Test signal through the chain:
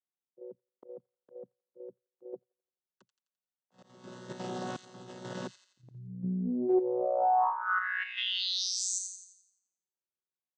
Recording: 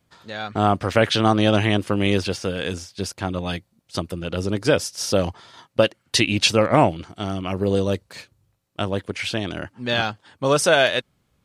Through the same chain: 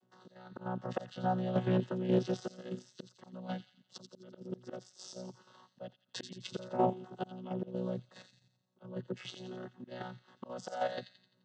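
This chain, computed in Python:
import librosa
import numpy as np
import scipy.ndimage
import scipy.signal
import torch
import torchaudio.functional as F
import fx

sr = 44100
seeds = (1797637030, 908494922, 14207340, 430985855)

y = fx.chord_vocoder(x, sr, chord='bare fifth', root=47)
y = fx.notch(y, sr, hz=2400.0, q=6.3)
y = fx.auto_swell(y, sr, attack_ms=761.0)
y = fx.peak_eq(y, sr, hz=2100.0, db=-7.0, octaves=0.42)
y = fx.level_steps(y, sr, step_db=9)
y = scipy.signal.sosfilt(scipy.signal.butter(2, 220.0, 'highpass', fs=sr, output='sos'), y)
y = fx.rider(y, sr, range_db=4, speed_s=0.5)
y = fx.dynamic_eq(y, sr, hz=730.0, q=6.1, threshold_db=-55.0, ratio=4.0, max_db=6)
y = fx.echo_wet_highpass(y, sr, ms=86, feedback_pct=47, hz=3000.0, wet_db=-6)
y = fx.doppler_dist(y, sr, depth_ms=0.2)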